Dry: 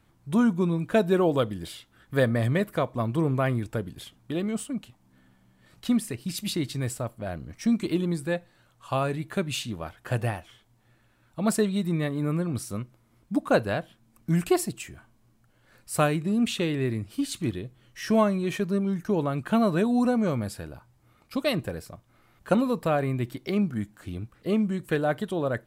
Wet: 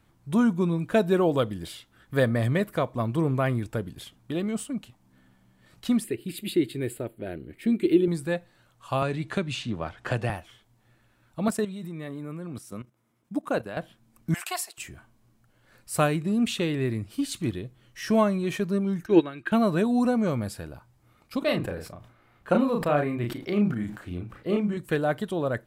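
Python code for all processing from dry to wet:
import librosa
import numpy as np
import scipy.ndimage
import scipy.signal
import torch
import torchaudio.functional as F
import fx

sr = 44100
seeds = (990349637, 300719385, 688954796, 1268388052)

y = fx.chain(x, sr, fx.low_shelf(hz=260.0, db=-7.5),
    fx.fixed_phaser(hz=2500.0, stages=4),
    fx.small_body(hz=(370.0, 970.0), ring_ms=25, db=14), at=(6.04, 8.08))
y = fx.chain(y, sr, fx.lowpass(hz=6400.0, slope=12),
    fx.band_squash(depth_pct=70), at=(9.02, 10.3))
y = fx.chain(y, sr, fx.highpass(hz=140.0, slope=12),
    fx.peak_eq(hz=4400.0, db=-5.5, octaves=0.23),
    fx.level_steps(step_db=12), at=(11.48, 13.77))
y = fx.chain(y, sr, fx.highpass(hz=720.0, slope=24),
    fx.band_squash(depth_pct=40), at=(14.34, 14.78))
y = fx.chain(y, sr, fx.peak_eq(hz=2400.0, db=15.0, octaves=1.6),
    fx.small_body(hz=(340.0, 1600.0, 3800.0), ring_ms=50, db=16),
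    fx.upward_expand(threshold_db=-23.0, expansion=2.5), at=(19.06, 19.52))
y = fx.chain(y, sr, fx.bass_treble(bass_db=-3, treble_db=-9),
    fx.doubler(ms=34.0, db=-4.0),
    fx.sustainer(db_per_s=97.0), at=(21.39, 24.77))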